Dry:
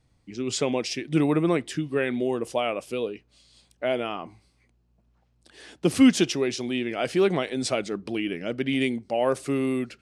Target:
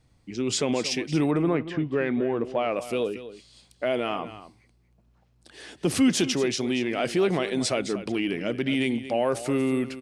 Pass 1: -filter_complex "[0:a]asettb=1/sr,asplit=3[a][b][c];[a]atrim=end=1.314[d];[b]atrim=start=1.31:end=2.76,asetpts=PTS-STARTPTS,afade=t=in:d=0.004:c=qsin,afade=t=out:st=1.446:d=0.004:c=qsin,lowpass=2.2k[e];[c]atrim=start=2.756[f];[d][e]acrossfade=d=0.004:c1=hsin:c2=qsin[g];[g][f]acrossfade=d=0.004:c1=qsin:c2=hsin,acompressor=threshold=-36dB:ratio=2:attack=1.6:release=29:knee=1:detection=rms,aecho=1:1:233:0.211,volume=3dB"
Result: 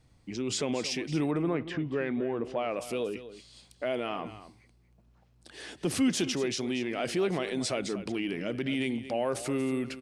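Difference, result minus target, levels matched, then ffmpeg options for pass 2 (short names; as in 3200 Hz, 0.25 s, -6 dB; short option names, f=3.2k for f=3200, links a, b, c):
compressor: peak gain reduction +5.5 dB
-filter_complex "[0:a]asettb=1/sr,asplit=3[a][b][c];[a]atrim=end=1.314[d];[b]atrim=start=1.31:end=2.76,asetpts=PTS-STARTPTS,afade=t=in:d=0.004:c=qsin,afade=t=out:st=1.446:d=0.004:c=qsin,lowpass=2.2k[e];[c]atrim=start=2.756[f];[d][e]acrossfade=d=0.004:c1=hsin:c2=qsin[g];[g][f]acrossfade=d=0.004:c1=qsin:c2=hsin,acompressor=threshold=-25dB:ratio=2:attack=1.6:release=29:knee=1:detection=rms,aecho=1:1:233:0.211,volume=3dB"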